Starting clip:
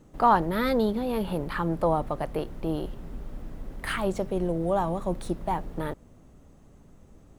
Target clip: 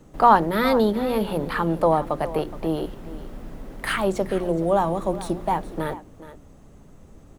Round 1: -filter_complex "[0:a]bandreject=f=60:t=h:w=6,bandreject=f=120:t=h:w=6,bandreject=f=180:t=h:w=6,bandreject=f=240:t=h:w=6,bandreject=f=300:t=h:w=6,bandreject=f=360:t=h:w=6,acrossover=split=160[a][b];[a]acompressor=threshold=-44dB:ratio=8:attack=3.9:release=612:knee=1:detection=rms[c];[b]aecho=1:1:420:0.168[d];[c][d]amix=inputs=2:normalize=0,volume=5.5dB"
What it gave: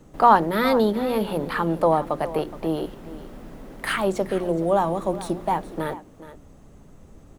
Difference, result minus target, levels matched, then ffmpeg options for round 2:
compressor: peak gain reduction +6 dB
-filter_complex "[0:a]bandreject=f=60:t=h:w=6,bandreject=f=120:t=h:w=6,bandreject=f=180:t=h:w=6,bandreject=f=240:t=h:w=6,bandreject=f=300:t=h:w=6,bandreject=f=360:t=h:w=6,acrossover=split=160[a][b];[a]acompressor=threshold=-37dB:ratio=8:attack=3.9:release=612:knee=1:detection=rms[c];[b]aecho=1:1:420:0.168[d];[c][d]amix=inputs=2:normalize=0,volume=5.5dB"

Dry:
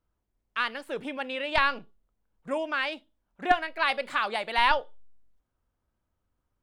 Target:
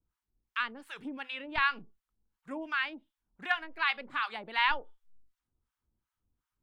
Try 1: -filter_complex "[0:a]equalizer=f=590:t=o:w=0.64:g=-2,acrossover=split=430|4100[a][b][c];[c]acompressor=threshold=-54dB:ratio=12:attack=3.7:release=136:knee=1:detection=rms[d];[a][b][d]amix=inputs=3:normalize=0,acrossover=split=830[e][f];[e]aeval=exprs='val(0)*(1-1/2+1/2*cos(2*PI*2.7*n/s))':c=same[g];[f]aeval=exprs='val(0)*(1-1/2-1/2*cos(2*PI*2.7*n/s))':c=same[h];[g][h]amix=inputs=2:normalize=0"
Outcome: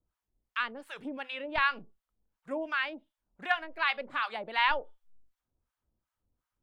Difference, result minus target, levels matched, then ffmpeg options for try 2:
500 Hz band +6.5 dB
-filter_complex "[0:a]equalizer=f=590:t=o:w=0.64:g=-11,acrossover=split=430|4100[a][b][c];[c]acompressor=threshold=-54dB:ratio=12:attack=3.7:release=136:knee=1:detection=rms[d];[a][b][d]amix=inputs=3:normalize=0,acrossover=split=830[e][f];[e]aeval=exprs='val(0)*(1-1/2+1/2*cos(2*PI*2.7*n/s))':c=same[g];[f]aeval=exprs='val(0)*(1-1/2-1/2*cos(2*PI*2.7*n/s))':c=same[h];[g][h]amix=inputs=2:normalize=0"

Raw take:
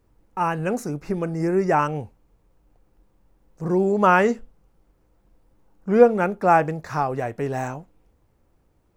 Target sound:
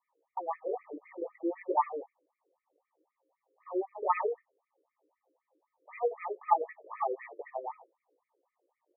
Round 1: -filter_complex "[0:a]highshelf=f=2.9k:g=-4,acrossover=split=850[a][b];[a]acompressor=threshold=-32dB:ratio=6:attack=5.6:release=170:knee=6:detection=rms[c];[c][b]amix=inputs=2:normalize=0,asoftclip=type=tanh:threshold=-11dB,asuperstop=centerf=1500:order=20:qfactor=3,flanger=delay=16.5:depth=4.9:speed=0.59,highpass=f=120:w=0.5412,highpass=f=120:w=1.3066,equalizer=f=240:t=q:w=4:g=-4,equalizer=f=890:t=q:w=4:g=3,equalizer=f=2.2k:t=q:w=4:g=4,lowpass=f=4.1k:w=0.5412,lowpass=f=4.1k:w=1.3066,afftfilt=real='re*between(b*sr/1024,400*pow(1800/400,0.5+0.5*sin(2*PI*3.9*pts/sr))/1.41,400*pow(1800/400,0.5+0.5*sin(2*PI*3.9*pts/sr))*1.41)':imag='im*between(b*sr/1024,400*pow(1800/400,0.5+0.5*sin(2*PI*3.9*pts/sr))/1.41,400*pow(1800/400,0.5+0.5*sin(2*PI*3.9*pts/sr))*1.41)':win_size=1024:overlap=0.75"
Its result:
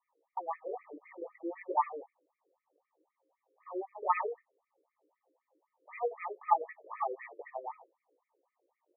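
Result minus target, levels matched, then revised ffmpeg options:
compressor: peak gain reduction +7 dB
-filter_complex "[0:a]highshelf=f=2.9k:g=-4,acrossover=split=850[a][b];[a]acompressor=threshold=-23.5dB:ratio=6:attack=5.6:release=170:knee=6:detection=rms[c];[c][b]amix=inputs=2:normalize=0,asoftclip=type=tanh:threshold=-11dB,asuperstop=centerf=1500:order=20:qfactor=3,flanger=delay=16.5:depth=4.9:speed=0.59,highpass=f=120:w=0.5412,highpass=f=120:w=1.3066,equalizer=f=240:t=q:w=4:g=-4,equalizer=f=890:t=q:w=4:g=3,equalizer=f=2.2k:t=q:w=4:g=4,lowpass=f=4.1k:w=0.5412,lowpass=f=4.1k:w=1.3066,afftfilt=real='re*between(b*sr/1024,400*pow(1800/400,0.5+0.5*sin(2*PI*3.9*pts/sr))/1.41,400*pow(1800/400,0.5+0.5*sin(2*PI*3.9*pts/sr))*1.41)':imag='im*between(b*sr/1024,400*pow(1800/400,0.5+0.5*sin(2*PI*3.9*pts/sr))/1.41,400*pow(1800/400,0.5+0.5*sin(2*PI*3.9*pts/sr))*1.41)':win_size=1024:overlap=0.75"

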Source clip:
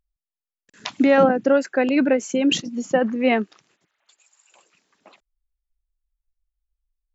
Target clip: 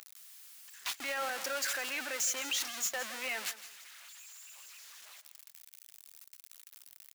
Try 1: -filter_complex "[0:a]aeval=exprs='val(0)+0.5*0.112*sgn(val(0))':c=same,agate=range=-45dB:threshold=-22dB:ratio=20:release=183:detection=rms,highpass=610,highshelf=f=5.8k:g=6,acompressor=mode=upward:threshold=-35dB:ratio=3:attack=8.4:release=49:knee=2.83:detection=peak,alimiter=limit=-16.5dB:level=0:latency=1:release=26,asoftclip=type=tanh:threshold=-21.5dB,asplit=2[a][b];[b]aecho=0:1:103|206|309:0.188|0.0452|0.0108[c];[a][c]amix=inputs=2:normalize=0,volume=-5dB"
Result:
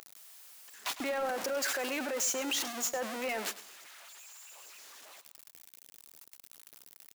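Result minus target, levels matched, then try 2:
echo 63 ms early; 500 Hz band +7.0 dB
-filter_complex "[0:a]aeval=exprs='val(0)+0.5*0.112*sgn(val(0))':c=same,agate=range=-45dB:threshold=-22dB:ratio=20:release=183:detection=rms,highpass=1.4k,highshelf=f=5.8k:g=6,acompressor=mode=upward:threshold=-35dB:ratio=3:attack=8.4:release=49:knee=2.83:detection=peak,alimiter=limit=-16.5dB:level=0:latency=1:release=26,asoftclip=type=tanh:threshold=-21.5dB,asplit=2[a][b];[b]aecho=0:1:166|332|498:0.188|0.0452|0.0108[c];[a][c]amix=inputs=2:normalize=0,volume=-5dB"

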